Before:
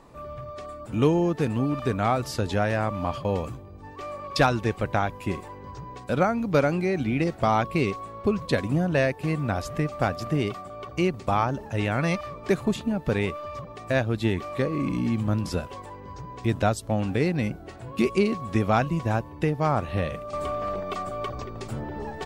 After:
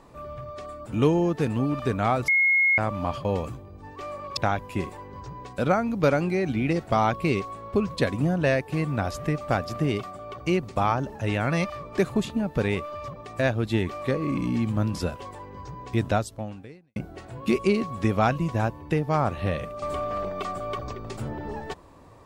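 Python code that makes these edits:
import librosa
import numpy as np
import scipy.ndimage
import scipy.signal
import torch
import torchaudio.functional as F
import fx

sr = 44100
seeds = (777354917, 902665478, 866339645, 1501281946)

y = fx.edit(x, sr, fx.bleep(start_s=2.28, length_s=0.5, hz=2160.0, db=-17.0),
    fx.cut(start_s=4.37, length_s=0.51),
    fx.fade_out_span(start_s=16.61, length_s=0.86, curve='qua'), tone=tone)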